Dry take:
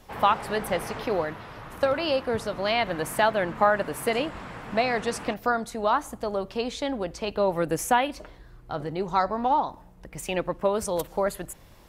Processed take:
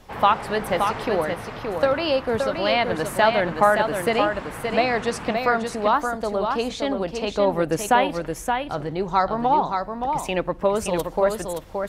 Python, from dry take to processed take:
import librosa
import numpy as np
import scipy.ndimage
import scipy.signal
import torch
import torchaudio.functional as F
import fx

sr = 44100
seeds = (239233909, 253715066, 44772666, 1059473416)

y = fx.high_shelf(x, sr, hz=9900.0, db=-7.5)
y = y + 10.0 ** (-5.5 / 20.0) * np.pad(y, (int(572 * sr / 1000.0), 0))[:len(y)]
y = y * librosa.db_to_amplitude(3.5)